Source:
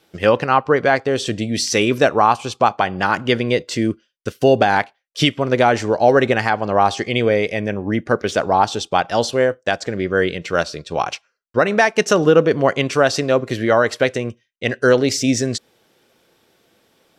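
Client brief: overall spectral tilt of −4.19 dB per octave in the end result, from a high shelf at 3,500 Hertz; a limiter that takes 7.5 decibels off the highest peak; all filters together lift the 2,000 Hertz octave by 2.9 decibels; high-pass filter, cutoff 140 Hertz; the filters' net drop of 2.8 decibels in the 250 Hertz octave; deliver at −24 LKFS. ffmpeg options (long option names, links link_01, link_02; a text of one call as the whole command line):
ffmpeg -i in.wav -af "highpass=140,equalizer=frequency=250:width_type=o:gain=-3,equalizer=frequency=2000:width_type=o:gain=5,highshelf=frequency=3500:gain=-4.5,volume=-3dB,alimiter=limit=-10dB:level=0:latency=1" out.wav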